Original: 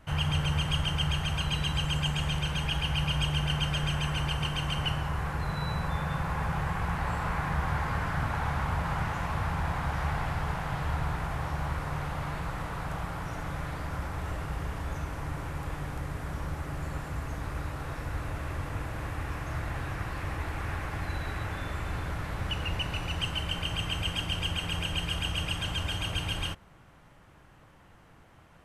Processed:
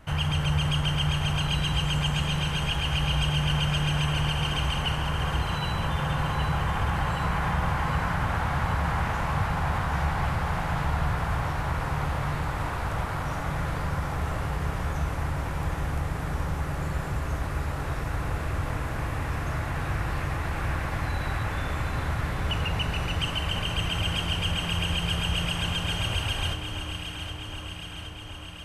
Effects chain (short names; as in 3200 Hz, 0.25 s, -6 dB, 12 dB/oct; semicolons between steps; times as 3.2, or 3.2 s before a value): in parallel at -1 dB: limiter -25.5 dBFS, peak gain reduction 9.5 dB; on the sum: echo with dull and thin repeats by turns 0.384 s, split 1300 Hz, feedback 82%, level -6 dB; gain -1.5 dB